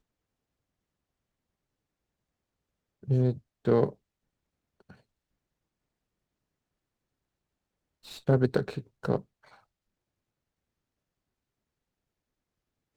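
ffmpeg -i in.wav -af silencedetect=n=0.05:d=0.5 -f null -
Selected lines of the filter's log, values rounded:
silence_start: 0.00
silence_end: 3.10 | silence_duration: 3.10
silence_start: 3.89
silence_end: 8.29 | silence_duration: 4.40
silence_start: 9.16
silence_end: 12.96 | silence_duration: 3.80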